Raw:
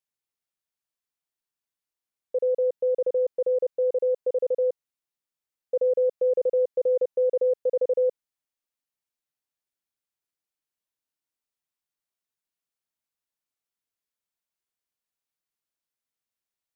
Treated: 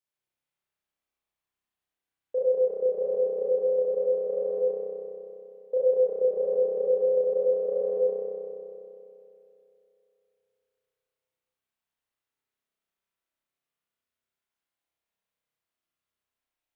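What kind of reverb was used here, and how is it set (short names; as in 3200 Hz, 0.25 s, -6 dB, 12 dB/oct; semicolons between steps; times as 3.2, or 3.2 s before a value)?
spring tank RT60 2.9 s, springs 31 ms, chirp 40 ms, DRR -7.5 dB; gain -3.5 dB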